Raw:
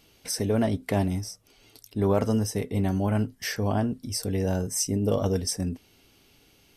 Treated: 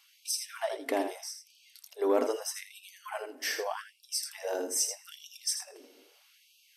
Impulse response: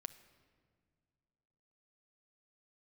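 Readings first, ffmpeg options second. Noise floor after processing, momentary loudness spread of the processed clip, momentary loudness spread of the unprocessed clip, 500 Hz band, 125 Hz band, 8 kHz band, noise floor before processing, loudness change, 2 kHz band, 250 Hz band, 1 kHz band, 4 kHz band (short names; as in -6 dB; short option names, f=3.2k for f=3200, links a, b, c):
-64 dBFS, 16 LU, 8 LU, -4.5 dB, under -40 dB, -1.0 dB, -60 dBFS, -6.0 dB, -1.5 dB, -14.5 dB, -3.5 dB, -1.0 dB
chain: -filter_complex "[0:a]asplit=2[a][b];[1:a]atrim=start_sample=2205,adelay=81[c];[b][c]afir=irnorm=-1:irlink=0,volume=-4dB[d];[a][d]amix=inputs=2:normalize=0,acontrast=75,afftfilt=real='re*gte(b*sr/1024,230*pow(2400/230,0.5+0.5*sin(2*PI*0.8*pts/sr)))':imag='im*gte(b*sr/1024,230*pow(2400/230,0.5+0.5*sin(2*PI*0.8*pts/sr)))':win_size=1024:overlap=0.75,volume=-8.5dB"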